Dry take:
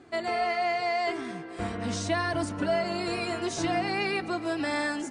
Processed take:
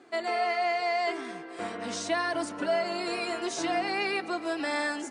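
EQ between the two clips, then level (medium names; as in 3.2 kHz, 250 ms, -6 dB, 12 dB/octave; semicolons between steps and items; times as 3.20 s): high-pass 310 Hz 12 dB/octave; 0.0 dB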